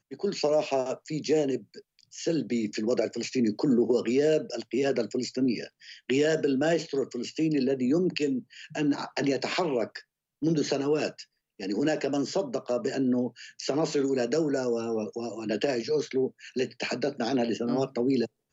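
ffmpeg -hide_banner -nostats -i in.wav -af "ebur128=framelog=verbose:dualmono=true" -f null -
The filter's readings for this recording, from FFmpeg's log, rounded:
Integrated loudness:
  I:         -25.3 LUFS
  Threshold: -35.5 LUFS
Loudness range:
  LRA:         2.5 LU
  Threshold: -45.5 LUFS
  LRA low:   -26.6 LUFS
  LRA high:  -24.1 LUFS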